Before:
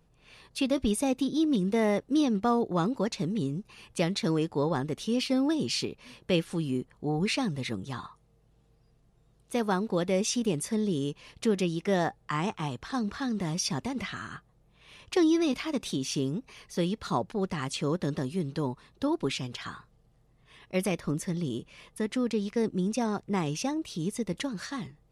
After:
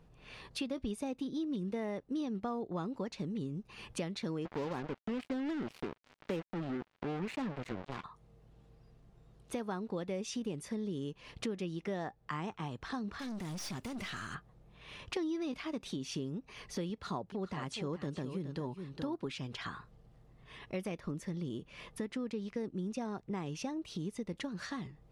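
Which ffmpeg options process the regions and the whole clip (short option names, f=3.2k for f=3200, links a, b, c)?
-filter_complex "[0:a]asettb=1/sr,asplit=3[a][b][c];[a]atrim=end=4.454[d];[b]atrim=start=4.45:end=8.04,asetpts=PTS-STARTPTS,afade=t=in:d=0.004:c=qsin,afade=t=out:st=3.586:d=0.004:c=qsin,aeval=exprs='val(0)+0.5*0.0211*sgn(val(0))':c=same,highpass=150,lowpass=2.2k,acrusher=bits=4:mix=0:aa=0.5[e];[c]atrim=start=8.036[f];[d][e]acrossfade=d=0.004:c1=hsin:c2=qsin[g];[g][f]acrossfade=d=0.004:c1=qsin:c2=hsin,asettb=1/sr,asplit=3[h][i][j];[h]atrim=end=13.194[k];[i]atrim=start=13.19:end=14.35,asetpts=PTS-STARTPTS,afade=t=in:d=0.004:c=qsin,afade=t=out:st=1.156:d=0.004:c=qsin,aemphasis=mode=production:type=75fm,acrusher=bits=9:mode=log:mix=0:aa=0.000001,aeval=exprs='(tanh(56.2*val(0)+0.3)-tanh(0.3))/56.2':c=same[l];[j]atrim=start=14.346[m];[k][l]acrossfade=d=0.004:c1=hsin:c2=qsin[n];[n][m]acrossfade=d=0.004:c1=qsin:c2=hsin,asettb=1/sr,asplit=3[o][p][q];[o]atrim=end=16.904[r];[p]atrim=start=16.9:end=19.25,asetpts=PTS-STARTPTS,afade=t=in:d=0.004:c=qsin,afade=t=out:st=2.346:d=0.004:c=qsin,highpass=48,aecho=1:1:420:0.282,atrim=end_sample=103635[s];[q]atrim=start=19.246[t];[r][s]acrossfade=d=0.004:c1=hsin:c2=qsin[u];[u][t]acrossfade=d=0.004:c1=qsin:c2=hsin,highshelf=f=5.7k:g=-11,acompressor=threshold=-44dB:ratio=3,volume=4dB"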